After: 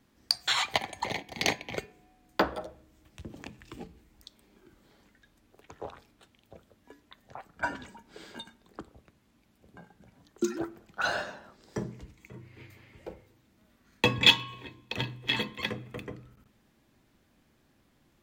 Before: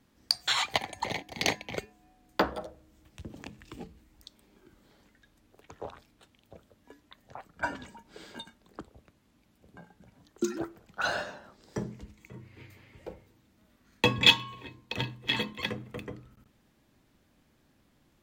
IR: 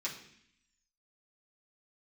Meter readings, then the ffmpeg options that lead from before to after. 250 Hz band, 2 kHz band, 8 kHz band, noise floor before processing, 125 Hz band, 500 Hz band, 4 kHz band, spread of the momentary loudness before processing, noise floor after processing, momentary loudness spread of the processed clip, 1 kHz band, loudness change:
0.0 dB, +0.5 dB, 0.0 dB, -67 dBFS, 0.0 dB, 0.0 dB, 0.0 dB, 22 LU, -68 dBFS, 22 LU, 0.0 dB, 0.0 dB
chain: -filter_complex "[0:a]asplit=2[a][b];[1:a]atrim=start_sample=2205,lowpass=3k[c];[b][c]afir=irnorm=-1:irlink=0,volume=-15.5dB[d];[a][d]amix=inputs=2:normalize=0"

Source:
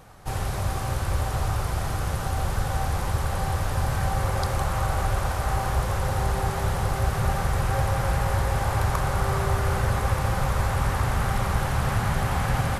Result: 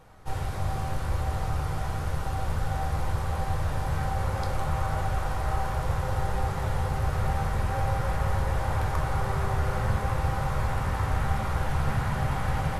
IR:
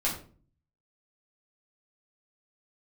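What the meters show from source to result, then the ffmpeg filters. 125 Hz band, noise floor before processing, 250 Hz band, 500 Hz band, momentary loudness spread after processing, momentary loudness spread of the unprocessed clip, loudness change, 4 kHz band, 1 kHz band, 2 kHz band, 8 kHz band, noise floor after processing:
-3.0 dB, -29 dBFS, -3.0 dB, -4.0 dB, 3 LU, 3 LU, -3.5 dB, -6.5 dB, -3.0 dB, -4.5 dB, -9.0 dB, -31 dBFS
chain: -filter_complex "[0:a]highshelf=f=4.7k:g=-6,asplit=2[a][b];[1:a]atrim=start_sample=2205,asetrate=39690,aresample=44100[c];[b][c]afir=irnorm=-1:irlink=0,volume=-8.5dB[d];[a][d]amix=inputs=2:normalize=0,volume=-8dB"

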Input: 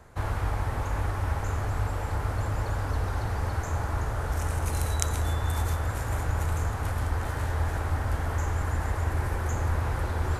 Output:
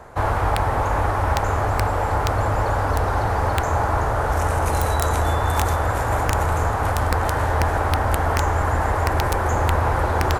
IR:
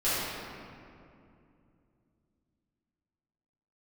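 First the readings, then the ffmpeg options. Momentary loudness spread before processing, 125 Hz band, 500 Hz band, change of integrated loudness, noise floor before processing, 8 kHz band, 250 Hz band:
2 LU, +5.5 dB, +13.0 dB, +8.5 dB, -33 dBFS, +5.5 dB, +9.0 dB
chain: -af "equalizer=f=760:t=o:w=2.3:g=10,aecho=1:1:664:0.119,aeval=exprs='(mod(5.01*val(0)+1,2)-1)/5.01':c=same,volume=5dB"

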